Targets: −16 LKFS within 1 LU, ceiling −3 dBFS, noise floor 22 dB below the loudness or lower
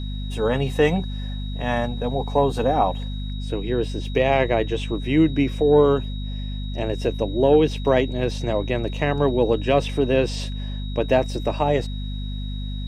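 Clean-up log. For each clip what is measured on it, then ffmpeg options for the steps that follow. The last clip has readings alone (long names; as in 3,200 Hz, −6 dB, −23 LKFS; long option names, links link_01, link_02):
mains hum 50 Hz; hum harmonics up to 250 Hz; level of the hum −26 dBFS; interfering tone 3,800 Hz; level of the tone −40 dBFS; integrated loudness −22.5 LKFS; sample peak −5.5 dBFS; target loudness −16.0 LKFS
→ -af "bandreject=frequency=50:width_type=h:width=4,bandreject=frequency=100:width_type=h:width=4,bandreject=frequency=150:width_type=h:width=4,bandreject=frequency=200:width_type=h:width=4,bandreject=frequency=250:width_type=h:width=4"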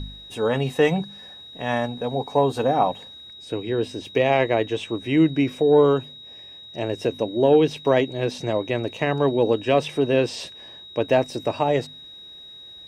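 mains hum none found; interfering tone 3,800 Hz; level of the tone −40 dBFS
→ -af "bandreject=frequency=3800:width=30"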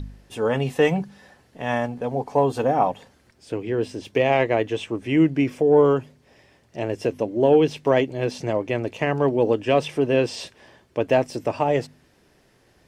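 interfering tone none found; integrated loudness −22.5 LKFS; sample peak −6.5 dBFS; target loudness −16.0 LKFS
→ -af "volume=6.5dB,alimiter=limit=-3dB:level=0:latency=1"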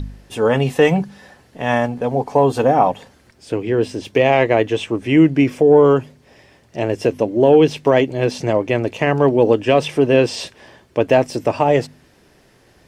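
integrated loudness −16.5 LKFS; sample peak −3.0 dBFS; background noise floor −53 dBFS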